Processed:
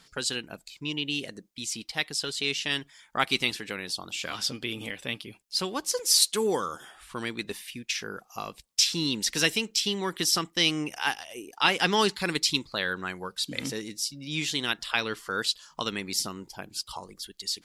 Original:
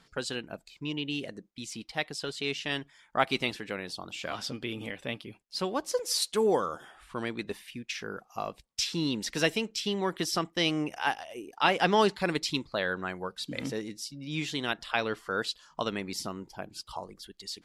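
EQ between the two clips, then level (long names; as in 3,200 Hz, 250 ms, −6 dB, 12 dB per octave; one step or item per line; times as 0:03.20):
dynamic equaliser 640 Hz, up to −7 dB, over −45 dBFS, Q 2.4
high-shelf EQ 3,000 Hz +11 dB
0.0 dB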